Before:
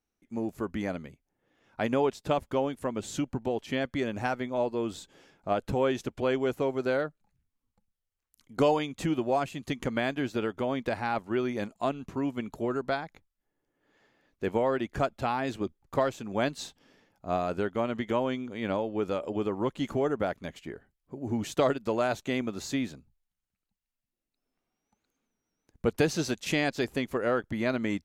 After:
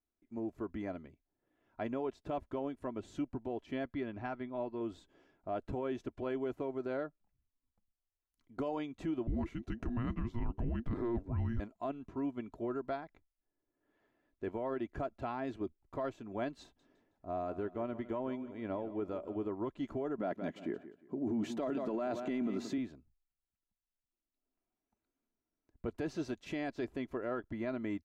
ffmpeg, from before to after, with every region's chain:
-filter_complex "[0:a]asettb=1/sr,asplit=3[a][b][c];[a]atrim=end=3.924[d];[b]atrim=start=3.92:end=4.81,asetpts=PTS-STARTPTS,afade=t=in:d=0.004:c=qsin,afade=t=out:st=0.886:d=0.004:c=qsin,lowpass=f=4.8k:w=0.5412,lowpass=f=4.8k:w=1.3066,equalizer=f=520:w=1.7:g=-4.5[e];[c]atrim=start=4.806[f];[d][e]acrossfade=d=0.004:c1=hsin:c2=qsin[g];[g][f]acrossfade=d=0.004:c1=qsin:c2=hsin,asettb=1/sr,asplit=3[h][i][j];[h]atrim=end=9.274[k];[i]atrim=start=9.27:end=11.6,asetpts=PTS-STARTPTS,afade=t=in:d=0.004:c=qsin,afade=t=out:st=2.326:d=0.004:c=qsin,equalizer=f=580:t=o:w=2:g=14,afreqshift=-470[l];[j]atrim=start=11.596[m];[k][l]acrossfade=d=0.004:c1=hsin:c2=qsin[n];[n][m]acrossfade=d=0.004:c1=qsin:c2=hsin,asettb=1/sr,asplit=3[o][p][q];[o]atrim=end=16.634[r];[p]atrim=start=16.63:end=19.49,asetpts=PTS-STARTPTS,afade=t=in:d=0.004:c=qsin,afade=t=out:st=2.856:d=0.004:c=qsin,equalizer=f=3.7k:t=o:w=2.4:g=-4,aecho=1:1:160|320|480:0.178|0.0676|0.0257,atrim=end_sample=126126[s];[q]atrim=start=19.486[t];[r][s]acrossfade=d=0.004:c1=hsin:c2=qsin[u];[u][t]acrossfade=d=0.004:c1=qsin:c2=hsin,asettb=1/sr,asplit=3[v][w][x];[v]atrim=end=20.184[y];[w]atrim=start=20.18:end=22.78,asetpts=PTS-STARTPTS,afade=t=in:d=0.004:c=qsin,afade=t=out:st=2.596:d=0.004:c=qsin,acontrast=75,highpass=f=190:t=q:w=1.9,aecho=1:1:177|354|531:0.168|0.047|0.0132,atrim=end_sample=114660[z];[x]atrim=start=22.776[aa];[y][z]acrossfade=d=0.004:c1=hsin:c2=qsin[ab];[ab][aa]acrossfade=d=0.004:c1=qsin:c2=hsin,lowpass=f=1.3k:p=1,aecho=1:1:3:0.42,alimiter=limit=-21dB:level=0:latency=1:release=13,volume=-7.5dB"

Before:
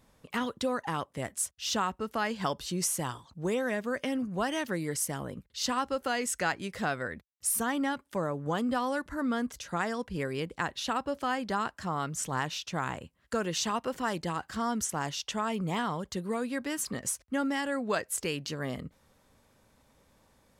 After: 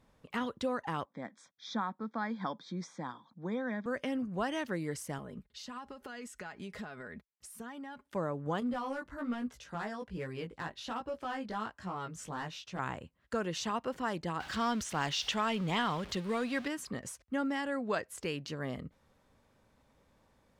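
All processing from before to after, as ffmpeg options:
-filter_complex "[0:a]asettb=1/sr,asplit=3[a][b][c];[a]atrim=end=1.054[d];[b]atrim=start=1.05:end=3.86,asetpts=PTS-STARTPTS,afade=t=in:d=0.004:c=qsin,afade=t=out:st=2.806:d=0.004:c=qsin,asuperstop=centerf=2800:order=12:qfactor=3.4,highpass=f=180:w=0.5412,highpass=f=180:w=1.3066,equalizer=f=220:t=q:w=4:g=4,equalizer=f=400:t=q:w=4:g=-10,equalizer=f=620:t=q:w=4:g=-6,equalizer=f=1.3k:t=q:w=4:g=-3,equalizer=f=2.1k:t=q:w=4:g=-5,equalizer=f=4.5k:t=q:w=4:g=-7,lowpass=f=4.7k:w=0.5412,lowpass=f=4.7k:w=1.3066[e];[c]atrim=start=3.856[f];[d][e]acrossfade=d=0.004:c1=hsin:c2=qsin[g];[g][f]acrossfade=d=0.004:c1=qsin:c2=hsin,asettb=1/sr,asplit=3[h][i][j];[h]atrim=end=5.184[k];[i]atrim=start=5.18:end=8.06,asetpts=PTS-STARTPTS,afade=t=in:d=0.004:c=qsin,afade=t=out:st=2.876:d=0.004:c=qsin,acompressor=threshold=-37dB:ratio=12:attack=3.2:release=140:knee=1:detection=peak,aecho=1:1:4.8:0.46,atrim=end_sample=127008[l];[j]atrim=start=8.056[m];[k][l]acrossfade=d=0.004:c1=hsin:c2=qsin[n];[n][m]acrossfade=d=0.004:c1=qsin:c2=hsin,asettb=1/sr,asplit=3[o][p][q];[o]atrim=end=8.604[r];[p]atrim=start=8.6:end=12.79,asetpts=PTS-STARTPTS,afade=t=in:d=0.004:c=qsin,afade=t=out:st=4.186:d=0.004:c=qsin,asoftclip=type=hard:threshold=-25dB,flanger=delay=16:depth=3:speed=1.2[s];[q]atrim=start=12.786[t];[r][s]acrossfade=d=0.004:c1=hsin:c2=qsin[u];[u][t]acrossfade=d=0.004:c1=qsin:c2=hsin,asettb=1/sr,asplit=3[v][w][x];[v]atrim=end=14.404[y];[w]atrim=start=14.4:end=16.68,asetpts=PTS-STARTPTS,afade=t=in:d=0.004:c=qsin,afade=t=out:st=2.276:d=0.004:c=qsin,aeval=exprs='val(0)+0.5*0.00841*sgn(val(0))':c=same,equalizer=f=3.5k:w=0.57:g=9[z];[x]atrim=start=16.676[aa];[y][z]acrossfade=d=0.004:c1=hsin:c2=qsin[ab];[ab][aa]acrossfade=d=0.004:c1=qsin:c2=hsin,deesser=0.5,highshelf=f=5.7k:g=-10.5,volume=-3dB"

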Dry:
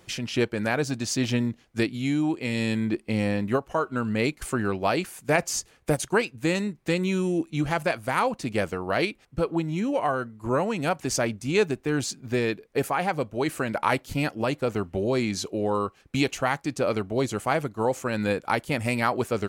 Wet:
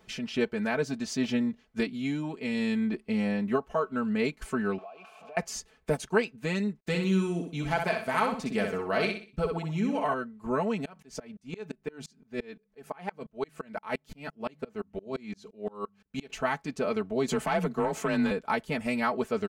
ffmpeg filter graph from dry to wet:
-filter_complex "[0:a]asettb=1/sr,asplit=3[a][b][c];[a]atrim=end=4.784[d];[b]atrim=start=4.78:end=5.37,asetpts=PTS-STARTPTS,afade=t=in:d=0.004:c=qsin,afade=t=out:st=0.586:d=0.004:c=qsin,aeval=exprs='val(0)+0.5*0.0794*sgn(val(0))':c=same,asplit=3[e][f][g];[e]bandpass=f=730:t=q:w=8,volume=0dB[h];[f]bandpass=f=1.09k:t=q:w=8,volume=-6dB[i];[g]bandpass=f=2.44k:t=q:w=8,volume=-9dB[j];[h][i][j]amix=inputs=3:normalize=0,acompressor=threshold=-41dB:ratio=4:attack=3.2:release=140:knee=1:detection=peak[k];[c]atrim=start=5.366[l];[d][k]acrossfade=d=0.004:c1=hsin:c2=qsin[m];[m][l]acrossfade=d=0.004:c1=qsin:c2=hsin,asettb=1/sr,asplit=3[n][o][p];[n]atrim=end=6.804[q];[o]atrim=start=6.8:end=10.14,asetpts=PTS-STARTPTS,afade=t=in:d=0.004:c=qsin,afade=t=out:st=3.336:d=0.004:c=qsin,agate=range=-33dB:threshold=-45dB:ratio=3:release=100:detection=peak,highshelf=f=4k:g=5,aecho=1:1:63|126|189|252:0.531|0.175|0.0578|0.0191,atrim=end_sample=147294[r];[p]atrim=start=10.136[s];[q][r]acrossfade=d=0.004:c1=hsin:c2=qsin[t];[t][s]acrossfade=d=0.004:c1=qsin:c2=hsin,asettb=1/sr,asplit=3[u][v][w];[u]atrim=end=10.854[x];[v]atrim=start=10.85:end=16.3,asetpts=PTS-STARTPTS,afade=t=in:d=0.004:c=qsin,afade=t=out:st=5.446:d=0.004:c=qsin,bandreject=f=50:t=h:w=6,bandreject=f=100:t=h:w=6,bandreject=f=150:t=h:w=6,bandreject=f=200:t=h:w=6,aeval=exprs='val(0)*pow(10,-31*if(lt(mod(-5.8*n/s,1),2*abs(-5.8)/1000),1-mod(-5.8*n/s,1)/(2*abs(-5.8)/1000),(mod(-5.8*n/s,1)-2*abs(-5.8)/1000)/(1-2*abs(-5.8)/1000))/20)':c=same[y];[w]atrim=start=16.296[z];[x][y]acrossfade=d=0.004:c1=hsin:c2=qsin[aa];[aa][z]acrossfade=d=0.004:c1=qsin:c2=hsin,asettb=1/sr,asplit=3[ab][ac][ad];[ab]atrim=end=17.284[ae];[ac]atrim=start=17.28:end=18.31,asetpts=PTS-STARTPTS,afade=t=in:d=0.004:c=qsin,afade=t=out:st=1.026:d=0.004:c=qsin,afreqshift=31,acompressor=threshold=-29dB:ratio=3:attack=3.2:release=140:knee=1:detection=peak,aeval=exprs='0.158*sin(PI/2*2*val(0)/0.158)':c=same[af];[ad]atrim=start=18.306[ag];[ae][af]acrossfade=d=0.004:c1=hsin:c2=qsin[ah];[ah][ag]acrossfade=d=0.004:c1=qsin:c2=hsin,equalizer=f=12k:t=o:w=1.7:g=-9.5,aecho=1:1:4.6:0.8,volume=-5.5dB"

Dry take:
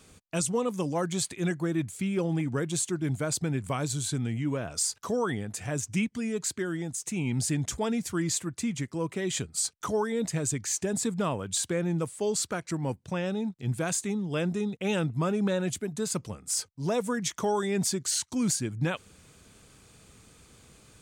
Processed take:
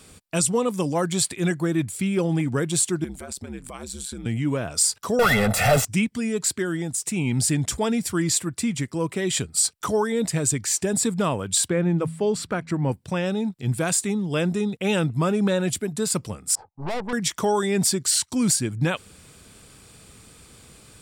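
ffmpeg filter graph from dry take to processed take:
-filter_complex "[0:a]asettb=1/sr,asplit=3[a][b][c];[a]atrim=end=3.044[d];[b]atrim=start=3.04:end=4.26,asetpts=PTS-STARTPTS,afade=t=in:d=0.004:c=qsin,afade=t=out:st=1.216:d=0.004:c=qsin,highpass=150,acompressor=threshold=-34dB:ratio=10:attack=3.2:release=140:knee=1:detection=peak,aeval=exprs='val(0)*sin(2*PI*69*n/s)':c=same[e];[c]atrim=start=4.256[f];[d][e]acrossfade=d=0.004:c1=hsin:c2=qsin[g];[g][f]acrossfade=d=0.004:c1=qsin:c2=hsin,asettb=1/sr,asplit=3[h][i][j];[h]atrim=end=5.194[k];[i]atrim=start=5.19:end=5.85,asetpts=PTS-STARTPTS,afade=t=in:d=0.004:c=qsin,afade=t=out:st=0.656:d=0.004:c=qsin,asplit=2[l][m];[m]highpass=f=720:p=1,volume=34dB,asoftclip=type=tanh:threshold=-18dB[n];[l][n]amix=inputs=2:normalize=0,lowpass=f=1.5k:p=1,volume=-6dB,equalizer=f=14k:w=1.1:g=12,aecho=1:1:1.5:0.94,atrim=end_sample=29106[o];[j]atrim=start=5.846[p];[k][o]acrossfade=d=0.004:c1=hsin:c2=qsin[q];[q][p]acrossfade=d=0.004:c1=qsin:c2=hsin,asettb=1/sr,asplit=3[r][s][t];[r]atrim=end=11.684[u];[s]atrim=start=11.68:end=12.92,asetpts=PTS-STARTPTS,afade=t=in:d=0.004:c=qsin,afade=t=out:st=1.236:d=0.004:c=qsin,bass=f=250:g=3,treble=f=4k:g=-13,bandreject=f=81.26:t=h:w=4,bandreject=f=162.52:t=h:w=4,bandreject=f=243.78:t=h:w=4[v];[t]atrim=start=12.916[w];[u][v]acrossfade=d=0.004:c1=hsin:c2=qsin[x];[x][w]acrossfade=d=0.004:c1=qsin:c2=hsin,asettb=1/sr,asplit=3[y][z][aa];[y]atrim=end=16.554[ab];[z]atrim=start=16.55:end=17.13,asetpts=PTS-STARTPTS,afade=t=in:d=0.004:c=qsin,afade=t=out:st=0.576:d=0.004:c=qsin,lowpass=f=830:t=q:w=9.8,aeval=exprs='(tanh(39.8*val(0)+0.75)-tanh(0.75))/39.8':c=same[ac];[aa]atrim=start=17.126[ad];[ab][ac]acrossfade=d=0.004:c1=hsin:c2=qsin[ae];[ae][ad]acrossfade=d=0.004:c1=qsin:c2=hsin,equalizer=f=12k:t=o:w=2.2:g=4,bandreject=f=6.4k:w=7.4,volume=5.5dB"

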